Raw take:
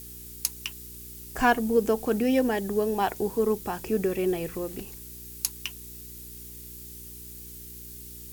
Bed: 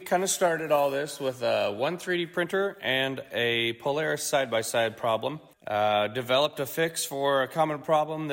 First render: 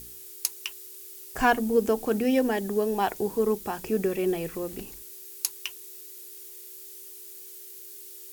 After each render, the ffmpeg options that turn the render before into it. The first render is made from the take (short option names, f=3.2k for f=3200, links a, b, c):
-af "bandreject=f=60:t=h:w=4,bandreject=f=120:t=h:w=4,bandreject=f=180:t=h:w=4,bandreject=f=240:t=h:w=4,bandreject=f=300:t=h:w=4"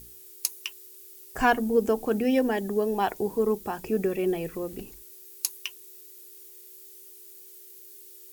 -af "afftdn=nr=6:nf=-45"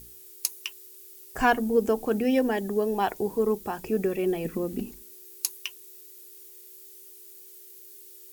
-filter_complex "[0:a]asettb=1/sr,asplit=3[a][b][c];[a]atrim=end=4.454[d];[b]atrim=start=4.45:end=5.54,asetpts=PTS-STARTPTS,afade=t=in:d=0.004:c=qsin,afade=t=out:st=1.086:d=0.004:c=qsin,equalizer=f=230:w=2:g=13[e];[c]atrim=start=5.536[f];[d][e]acrossfade=d=0.004:c1=hsin:c2=qsin[g];[g][f]acrossfade=d=0.004:c1=qsin:c2=hsin"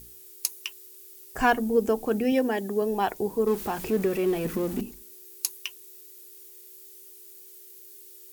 -filter_complex "[0:a]asettb=1/sr,asplit=3[a][b][c];[a]atrim=end=0.834[d];[b]atrim=start=0.83:end=1.58,asetpts=PTS-STARTPTS,afade=t=in:d=0.004:c=qsin,afade=t=out:st=0.746:d=0.004:c=qsin,acrusher=bits=8:mode=log:mix=0:aa=0.000001[e];[c]atrim=start=1.576[f];[d][e]acrossfade=d=0.004:c1=hsin:c2=qsin[g];[g][f]acrossfade=d=0.004:c1=qsin:c2=hsin,asettb=1/sr,asplit=3[h][i][j];[h]atrim=end=2.324[k];[i]atrim=start=2.32:end=2.82,asetpts=PTS-STARTPTS,afade=t=in:d=0.004:c=qsin,afade=t=out:st=0.496:d=0.004:c=qsin,highpass=f=120:p=1[l];[j]atrim=start=2.816[m];[k][l]acrossfade=d=0.004:c1=hsin:c2=qsin[n];[n][m]acrossfade=d=0.004:c1=qsin:c2=hsin,asettb=1/sr,asplit=3[o][p][q];[o]atrim=end=3.474[r];[p]atrim=start=3.47:end=4.81,asetpts=PTS-STARTPTS,afade=t=in:d=0.004:c=qsin,afade=t=out:st=1.336:d=0.004:c=qsin,aeval=exprs='val(0)+0.5*0.0188*sgn(val(0))':c=same[s];[q]atrim=start=4.806[t];[r][s]acrossfade=d=0.004:c1=hsin:c2=qsin[u];[u][t]acrossfade=d=0.004:c1=qsin:c2=hsin"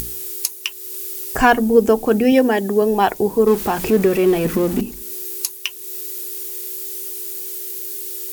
-af "acompressor=mode=upward:threshold=-28dB:ratio=2.5,alimiter=level_in=10dB:limit=-1dB:release=50:level=0:latency=1"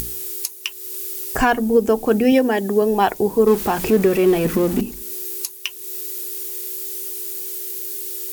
-af "alimiter=limit=-5.5dB:level=0:latency=1:release=406"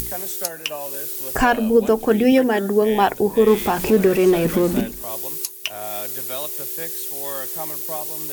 -filter_complex "[1:a]volume=-8.5dB[a];[0:a][a]amix=inputs=2:normalize=0"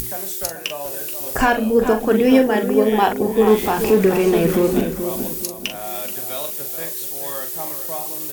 -filter_complex "[0:a]asplit=2[a][b];[b]adelay=42,volume=-8dB[c];[a][c]amix=inputs=2:normalize=0,asplit=2[d][e];[e]adelay=429,lowpass=f=1.5k:p=1,volume=-8dB,asplit=2[f][g];[g]adelay=429,lowpass=f=1.5k:p=1,volume=0.36,asplit=2[h][i];[i]adelay=429,lowpass=f=1.5k:p=1,volume=0.36,asplit=2[j][k];[k]adelay=429,lowpass=f=1.5k:p=1,volume=0.36[l];[d][f][h][j][l]amix=inputs=5:normalize=0"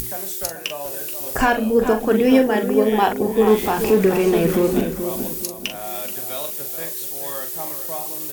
-af "volume=-1dB"